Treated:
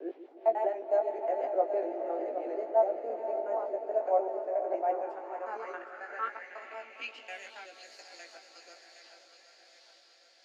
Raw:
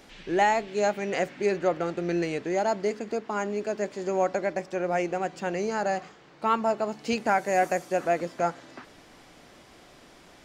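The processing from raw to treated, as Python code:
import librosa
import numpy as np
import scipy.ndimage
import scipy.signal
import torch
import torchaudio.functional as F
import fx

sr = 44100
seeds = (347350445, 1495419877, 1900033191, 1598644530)

p1 = fx.block_reorder(x, sr, ms=91.0, group=4)
p2 = fx.rotary_switch(p1, sr, hz=6.0, then_hz=1.2, switch_at_s=3.02)
p3 = fx.echo_split(p2, sr, split_hz=450.0, low_ms=147, high_ms=768, feedback_pct=52, wet_db=-10)
p4 = fx.rider(p3, sr, range_db=3, speed_s=0.5)
p5 = p3 + (p4 * 10.0 ** (-1.5 / 20.0))
p6 = scipy.signal.sosfilt(scipy.signal.butter(16, 250.0, 'highpass', fs=sr, output='sos'), p5)
p7 = fx.doubler(p6, sr, ms=18.0, db=-4.5)
p8 = p7 + fx.echo_diffused(p7, sr, ms=506, feedback_pct=59, wet_db=-8.5, dry=0)
p9 = fx.filter_sweep_bandpass(p8, sr, from_hz=680.0, to_hz=4500.0, start_s=4.77, end_s=8.01, q=4.2)
p10 = fx.low_shelf(p9, sr, hz=370.0, db=7.5)
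y = p10 * 10.0 ** (-4.5 / 20.0)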